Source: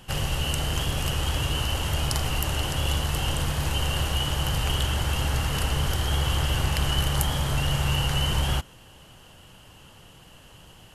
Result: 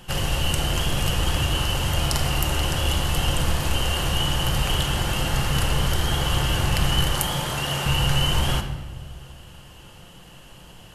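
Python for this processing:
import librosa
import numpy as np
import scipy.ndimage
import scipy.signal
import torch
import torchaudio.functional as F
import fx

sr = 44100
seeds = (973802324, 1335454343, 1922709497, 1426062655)

y = fx.bessel_highpass(x, sr, hz=220.0, order=2, at=(7.09, 7.86))
y = fx.room_shoebox(y, sr, seeds[0], volume_m3=970.0, walls='mixed', distance_m=0.87)
y = y * 10.0 ** (2.5 / 20.0)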